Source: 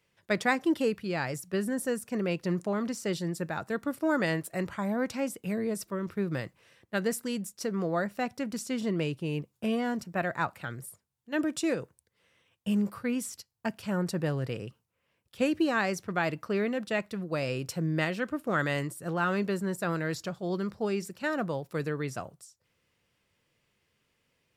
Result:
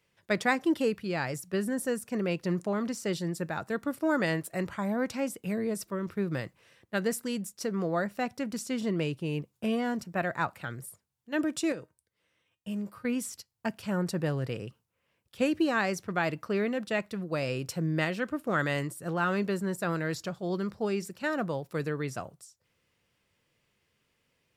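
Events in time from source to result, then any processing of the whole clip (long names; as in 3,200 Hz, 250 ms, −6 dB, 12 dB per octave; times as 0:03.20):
0:11.72–0:13.05: tuned comb filter 310 Hz, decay 0.2 s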